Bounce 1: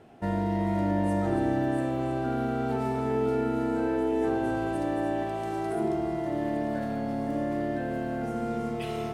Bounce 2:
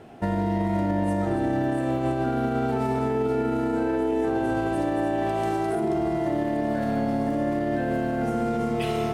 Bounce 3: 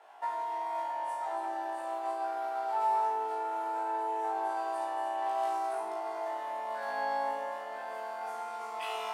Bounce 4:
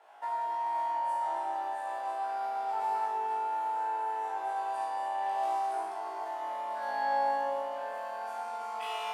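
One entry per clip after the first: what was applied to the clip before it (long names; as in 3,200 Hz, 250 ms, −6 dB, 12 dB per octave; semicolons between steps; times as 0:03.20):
brickwall limiter −24 dBFS, peak gain reduction 8 dB; level +7 dB
four-pole ladder high-pass 780 Hz, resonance 60%; on a send: flutter between parallel walls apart 3.1 metres, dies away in 0.55 s
comb and all-pass reverb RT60 1.5 s, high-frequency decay 0.75×, pre-delay 5 ms, DRR 0.5 dB; level −2.5 dB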